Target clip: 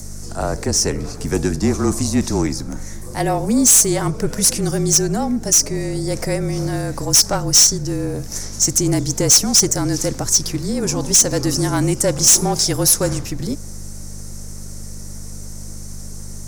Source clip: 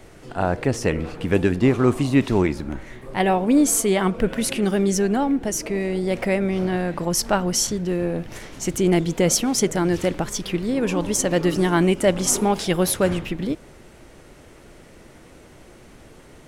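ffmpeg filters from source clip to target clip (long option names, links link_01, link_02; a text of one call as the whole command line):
ffmpeg -i in.wav -filter_complex "[0:a]highshelf=frequency=4200:width_type=q:width=3:gain=11.5,acrossover=split=240|660|6800[link_01][link_02][link_03][link_04];[link_04]acompressor=mode=upward:threshold=-35dB:ratio=2.5[link_05];[link_01][link_02][link_03][link_05]amix=inputs=4:normalize=0,aeval=exprs='val(0)+0.0316*(sin(2*PI*50*n/s)+sin(2*PI*2*50*n/s)/2+sin(2*PI*3*50*n/s)/3+sin(2*PI*4*50*n/s)/4+sin(2*PI*5*50*n/s)/5)':channel_layout=same,asoftclip=type=tanh:threshold=-8dB,afreqshift=-32,volume=1dB" out.wav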